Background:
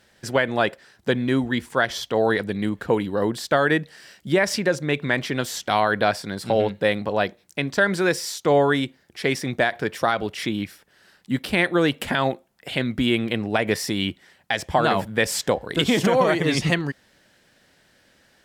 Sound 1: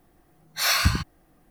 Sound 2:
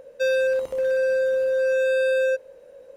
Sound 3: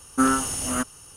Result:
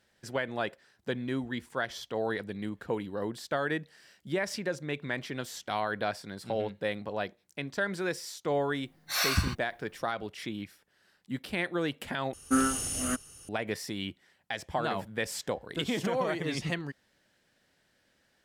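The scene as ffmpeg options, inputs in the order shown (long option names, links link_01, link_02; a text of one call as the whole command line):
ffmpeg -i bed.wav -i cue0.wav -i cue1.wav -i cue2.wav -filter_complex "[0:a]volume=-11.5dB[link_01];[3:a]equalizer=frequency=970:width_type=o:width=0.57:gain=-9.5[link_02];[link_01]asplit=2[link_03][link_04];[link_03]atrim=end=12.334[link_05];[link_02]atrim=end=1.16,asetpts=PTS-STARTPTS,volume=-4.5dB[link_06];[link_04]atrim=start=13.486[link_07];[1:a]atrim=end=1.5,asetpts=PTS-STARTPTS,volume=-6.5dB,afade=type=in:duration=0.004:curve=hsin,afade=type=out:start_time=1.496:duration=0.004:curve=hsin,adelay=8520[link_08];[link_05][link_06]acrossfade=duration=0.004:curve1=hsin:curve2=hsin[link_09];[link_09][link_07]acrossfade=duration=0.004:curve1=hsin:curve2=hsin[link_10];[link_10][link_08]amix=inputs=2:normalize=0" out.wav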